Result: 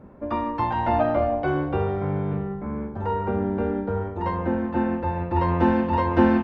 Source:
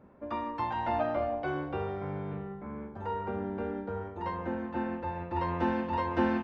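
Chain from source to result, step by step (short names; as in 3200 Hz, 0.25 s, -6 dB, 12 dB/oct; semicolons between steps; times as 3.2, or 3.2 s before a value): tilt -1.5 dB/oct; gain +7.5 dB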